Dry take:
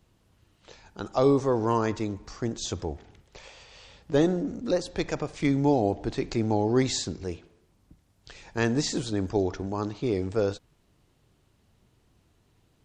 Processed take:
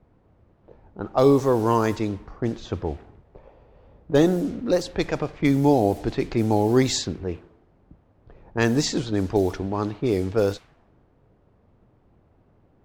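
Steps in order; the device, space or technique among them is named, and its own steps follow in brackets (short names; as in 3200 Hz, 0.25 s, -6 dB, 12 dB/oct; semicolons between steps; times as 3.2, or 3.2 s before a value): cassette deck with a dynamic noise filter (white noise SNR 24 dB; low-pass opened by the level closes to 480 Hz, open at -21.5 dBFS); gain +4.5 dB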